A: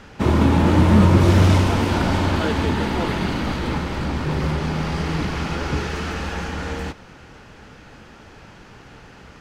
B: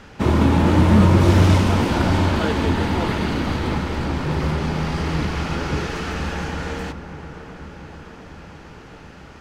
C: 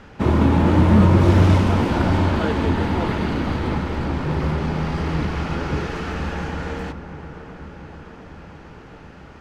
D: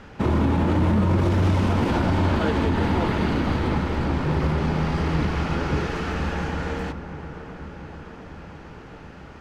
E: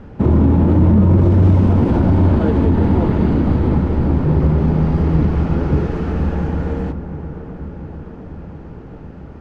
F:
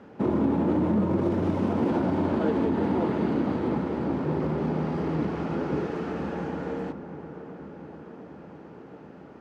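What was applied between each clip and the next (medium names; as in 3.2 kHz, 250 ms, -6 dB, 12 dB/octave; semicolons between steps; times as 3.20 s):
feedback echo behind a low-pass 704 ms, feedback 66%, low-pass 1.7 kHz, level -12.5 dB
treble shelf 3.4 kHz -8.5 dB
peak limiter -12.5 dBFS, peak gain reduction 10 dB
tilt shelf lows +9.5 dB, about 920 Hz
high-pass 250 Hz 12 dB/octave; trim -5.5 dB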